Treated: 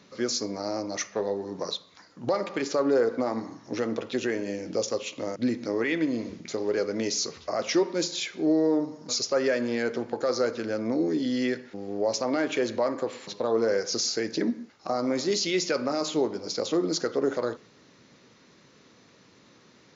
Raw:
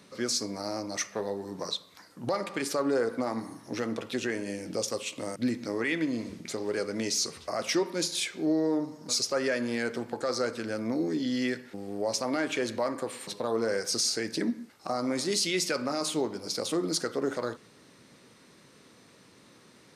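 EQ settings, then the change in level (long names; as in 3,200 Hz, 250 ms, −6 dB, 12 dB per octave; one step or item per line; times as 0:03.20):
dynamic equaliser 460 Hz, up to +5 dB, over −42 dBFS, Q 0.86
linear-phase brick-wall low-pass 7,300 Hz
0.0 dB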